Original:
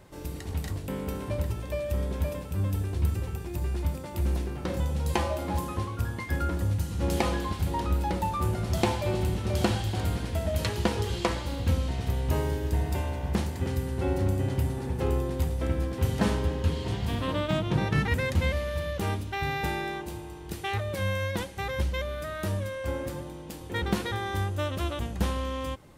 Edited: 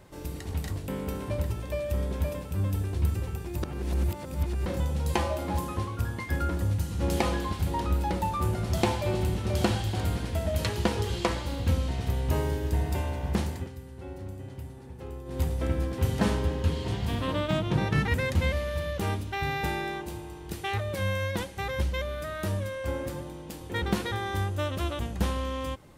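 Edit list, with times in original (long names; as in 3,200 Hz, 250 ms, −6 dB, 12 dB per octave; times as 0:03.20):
0:03.63–0:04.66: reverse
0:13.53–0:15.41: duck −13 dB, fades 0.16 s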